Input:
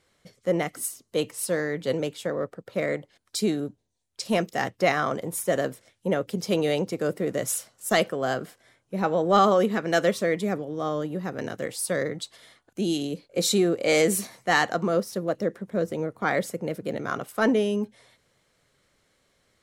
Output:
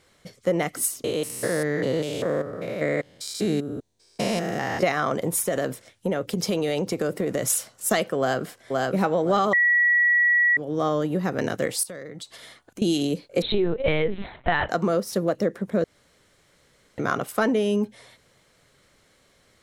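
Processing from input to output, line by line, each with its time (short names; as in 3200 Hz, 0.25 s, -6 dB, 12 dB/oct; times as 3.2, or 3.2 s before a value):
1.04–4.83 stepped spectrum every 0.2 s
5.43–7.5 compressor 5:1, threshold -27 dBFS
8.18–8.94 echo throw 0.52 s, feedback 35%, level -4 dB
9.53–10.57 bleep 1930 Hz -13.5 dBFS
11.83–12.82 compressor, threshold -42 dBFS
13.42–14.69 LPC vocoder at 8 kHz pitch kept
15.84–16.98 room tone
whole clip: compressor 5:1, threshold -26 dBFS; gain +7 dB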